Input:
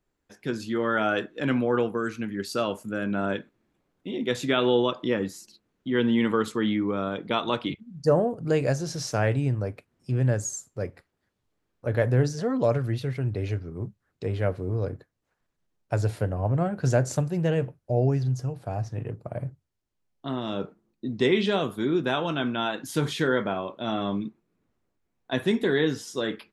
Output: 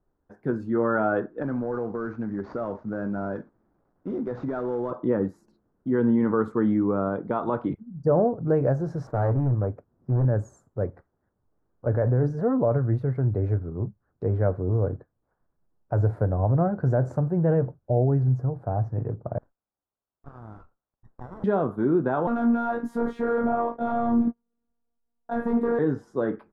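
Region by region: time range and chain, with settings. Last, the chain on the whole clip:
1.42–4.91 s: CVSD coder 32 kbps + compression 4:1, threshold -28 dBFS + hard clipper -25.5 dBFS
9.07–10.25 s: median filter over 15 samples + overload inside the chain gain 23 dB
19.38–21.44 s: high-pass 1.5 kHz 24 dB/octave + compression 3:1, threshold -40 dBFS + sliding maximum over 17 samples
22.27–25.79 s: waveshaping leveller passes 3 + chorus 1.4 Hz, delay 18.5 ms, depth 2.7 ms + robot voice 235 Hz
whole clip: bass shelf 160 Hz +6.5 dB; peak limiter -14.5 dBFS; FFT filter 150 Hz 0 dB, 820 Hz +4 dB, 1.5 kHz -1 dB, 2.8 kHz -26 dB

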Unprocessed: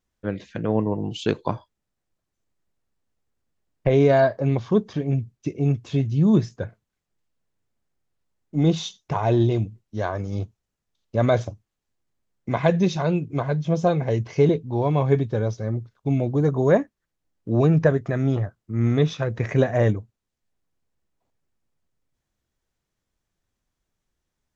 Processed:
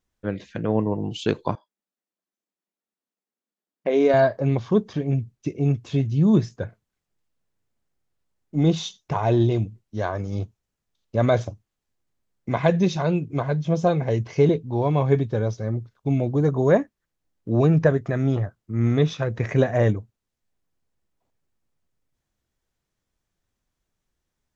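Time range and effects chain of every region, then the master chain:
1.55–4.14 s: brick-wall FIR high-pass 170 Hz + upward expansion, over -33 dBFS
whole clip: none

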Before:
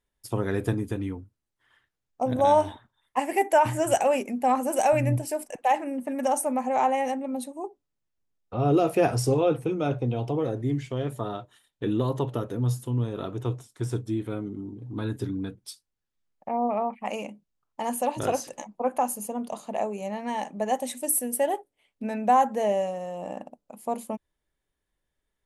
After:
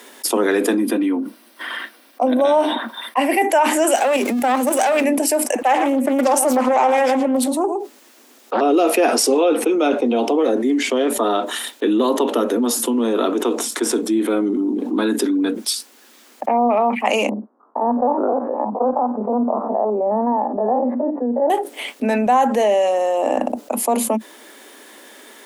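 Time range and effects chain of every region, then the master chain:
0.77–3.42 s: peaking EQ 7 kHz -15 dB 0.37 oct + comb of notches 430 Hz
3.95–5.04 s: jump at every zero crossing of -39.5 dBFS + valve stage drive 18 dB, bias 0.45 + level held to a coarse grid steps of 9 dB
5.63–8.61 s: delay 113 ms -13.5 dB + loudspeaker Doppler distortion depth 0.83 ms
17.29–21.50 s: spectrogram pixelated in time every 50 ms + steep low-pass 1.2 kHz + tremolo 1.4 Hz, depth 55%
whole clip: steep high-pass 220 Hz 96 dB/octave; dynamic bell 3.1 kHz, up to +4 dB, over -42 dBFS, Q 0.88; level flattener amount 70%; trim +3 dB

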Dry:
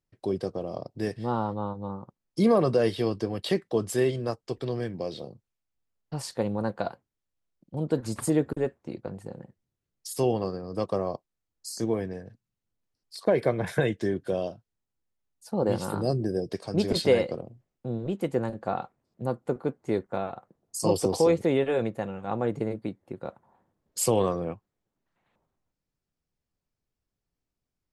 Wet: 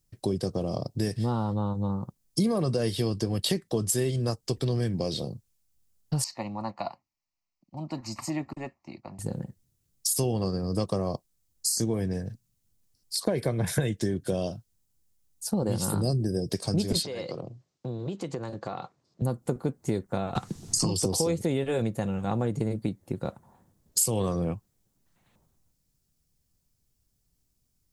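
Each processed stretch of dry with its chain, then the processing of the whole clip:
6.24–9.19 s: three-band isolator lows -19 dB, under 320 Hz, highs -16 dB, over 4.2 kHz + static phaser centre 2.3 kHz, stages 8
17.03–19.22 s: compression, threshold -33 dBFS + cabinet simulation 160–6400 Hz, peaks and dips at 220 Hz -9 dB, 1.1 kHz +4 dB, 4.2 kHz +3 dB
20.35–21.03 s: low-pass 7 kHz + peaking EQ 580 Hz -12 dB 0.55 oct + three bands compressed up and down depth 100%
whole clip: tone controls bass +10 dB, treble +15 dB; compression 4:1, threshold -27 dBFS; trim +2.5 dB

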